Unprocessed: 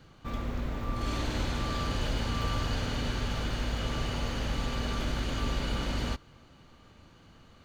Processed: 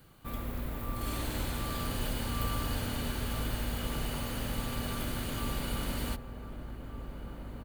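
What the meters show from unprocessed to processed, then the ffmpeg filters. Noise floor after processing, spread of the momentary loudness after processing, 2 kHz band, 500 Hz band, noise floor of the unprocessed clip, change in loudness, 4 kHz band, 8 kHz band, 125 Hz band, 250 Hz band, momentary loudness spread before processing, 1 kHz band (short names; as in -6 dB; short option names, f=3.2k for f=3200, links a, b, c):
-45 dBFS, 10 LU, -3.5 dB, -3.0 dB, -57 dBFS, -3.0 dB, -3.5 dB, +2.5 dB, -3.0 dB, -2.0 dB, 4 LU, -3.0 dB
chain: -filter_complex "[0:a]asplit=2[a][b];[b]adelay=1516,volume=-7dB,highshelf=f=4k:g=-34.1[c];[a][c]amix=inputs=2:normalize=0,aexciter=amount=10.7:drive=3.8:freq=8.7k,volume=-3.5dB"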